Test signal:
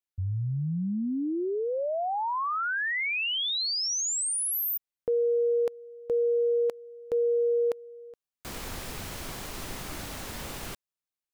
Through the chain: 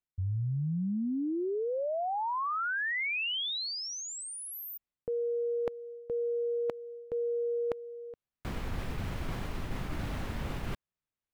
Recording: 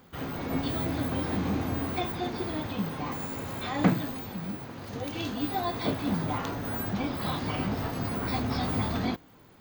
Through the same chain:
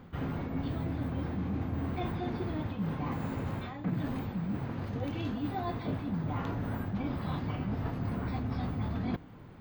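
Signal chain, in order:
bass and treble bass +8 dB, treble −14 dB
reversed playback
downward compressor 8 to 1, threshold −32 dBFS
reversed playback
level +1.5 dB

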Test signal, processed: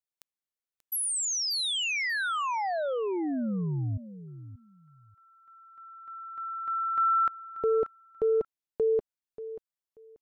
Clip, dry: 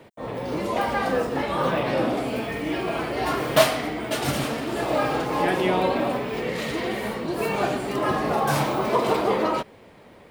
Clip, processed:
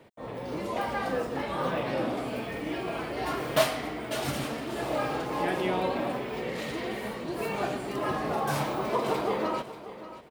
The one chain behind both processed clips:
repeating echo 585 ms, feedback 20%, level −14 dB
level −6.5 dB

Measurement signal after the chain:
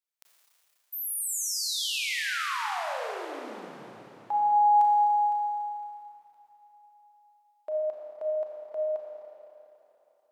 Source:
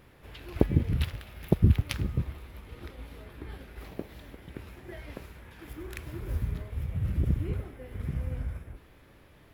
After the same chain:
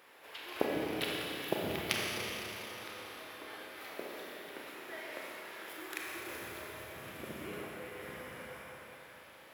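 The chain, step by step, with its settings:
high-pass filter 620 Hz 12 dB per octave
four-comb reverb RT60 3.6 s, combs from 28 ms, DRR −3 dB
level +1.5 dB

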